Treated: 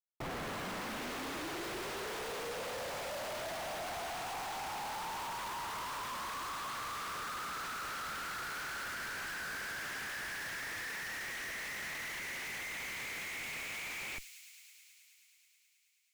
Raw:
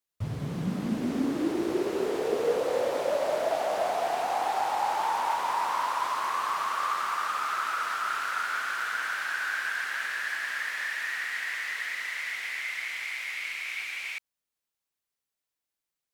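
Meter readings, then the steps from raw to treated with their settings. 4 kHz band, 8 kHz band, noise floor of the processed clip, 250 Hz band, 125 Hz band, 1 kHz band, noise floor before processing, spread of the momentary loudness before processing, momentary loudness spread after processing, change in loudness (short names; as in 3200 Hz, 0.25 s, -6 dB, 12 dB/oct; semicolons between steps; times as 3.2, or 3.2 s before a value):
-4.5 dB, -2.0 dB, -69 dBFS, -15.0 dB, n/a, -12.0 dB, under -85 dBFS, 5 LU, 0 LU, -10.0 dB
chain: differentiator; overdrive pedal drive 20 dB, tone 2900 Hz, clips at -29.5 dBFS; Schmitt trigger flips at -46.5 dBFS; high shelf 3000 Hz -9 dB; thin delay 0.107 s, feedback 85%, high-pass 5200 Hz, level -5.5 dB; gain +1.5 dB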